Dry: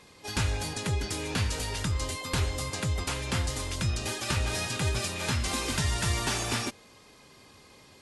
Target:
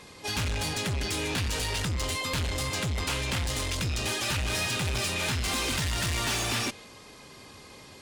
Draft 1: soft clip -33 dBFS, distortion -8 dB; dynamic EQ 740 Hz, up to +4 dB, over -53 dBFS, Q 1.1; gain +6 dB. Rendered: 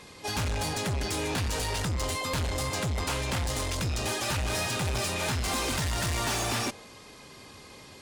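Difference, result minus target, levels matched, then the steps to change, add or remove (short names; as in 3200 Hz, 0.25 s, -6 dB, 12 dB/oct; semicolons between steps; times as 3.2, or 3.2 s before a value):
1000 Hz band +3.0 dB
change: dynamic EQ 2900 Hz, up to +4 dB, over -53 dBFS, Q 1.1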